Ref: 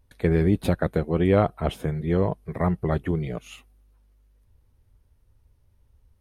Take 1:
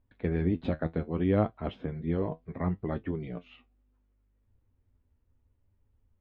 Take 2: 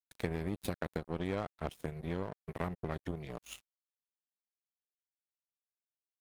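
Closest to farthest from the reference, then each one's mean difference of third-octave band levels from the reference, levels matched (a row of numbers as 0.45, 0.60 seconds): 1, 2; 3.0, 6.5 decibels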